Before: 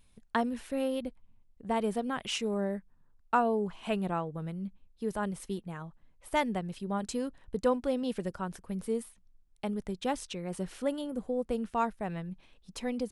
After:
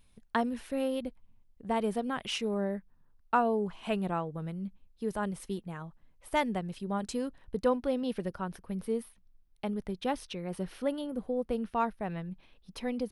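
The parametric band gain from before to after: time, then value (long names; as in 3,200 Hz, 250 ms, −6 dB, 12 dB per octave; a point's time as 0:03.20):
parametric band 7,400 Hz 0.41 octaves
0:02.19 −4 dB
0:02.72 −14.5 dB
0:03.73 −3.5 dB
0:07.12 −3.5 dB
0:07.87 −14.5 dB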